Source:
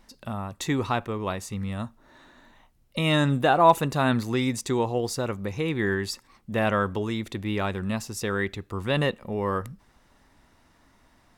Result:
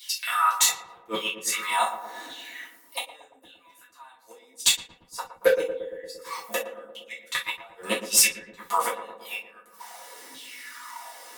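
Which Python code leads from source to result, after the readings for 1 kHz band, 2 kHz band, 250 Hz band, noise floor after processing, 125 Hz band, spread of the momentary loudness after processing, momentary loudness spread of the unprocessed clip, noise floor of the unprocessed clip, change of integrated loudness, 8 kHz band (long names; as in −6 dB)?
−2.5 dB, 0.0 dB, −17.0 dB, −57 dBFS, below −25 dB, 20 LU, 12 LU, −62 dBFS, +1.0 dB, +14.0 dB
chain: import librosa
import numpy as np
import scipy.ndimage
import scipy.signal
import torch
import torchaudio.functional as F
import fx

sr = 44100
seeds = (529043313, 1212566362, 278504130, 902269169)

p1 = fx.gate_flip(x, sr, shuts_db=-20.0, range_db=-40)
p2 = fx.low_shelf(p1, sr, hz=170.0, db=-10.5)
p3 = p2 + 0.54 * np.pad(p2, (int(4.1 * sr / 1000.0), 0))[:len(p2)]
p4 = fx.rider(p3, sr, range_db=5, speed_s=0.5)
p5 = fx.riaa(p4, sr, side='recording')
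p6 = fx.filter_lfo_highpass(p5, sr, shape='saw_down', hz=0.87, low_hz=270.0, high_hz=3500.0, q=5.2)
p7 = np.clip(p6, -10.0 ** (-20.5 / 20.0), 10.0 ** (-20.5 / 20.0))
p8 = p7 + fx.echo_filtered(p7, sr, ms=115, feedback_pct=79, hz=860.0, wet_db=-8.0, dry=0)
p9 = fx.rev_gated(p8, sr, seeds[0], gate_ms=90, shape='falling', drr_db=-6.0)
y = p9 * 10.0 ** (5.0 / 20.0)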